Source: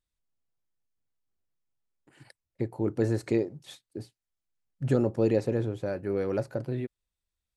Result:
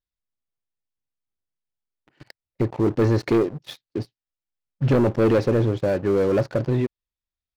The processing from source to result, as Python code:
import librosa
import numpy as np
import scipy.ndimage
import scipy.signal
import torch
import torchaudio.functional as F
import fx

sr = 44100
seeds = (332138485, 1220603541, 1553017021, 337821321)

y = scipy.signal.sosfilt(scipy.signal.butter(6, 5700.0, 'lowpass', fs=sr, output='sos'), x)
y = fx.leveller(y, sr, passes=3)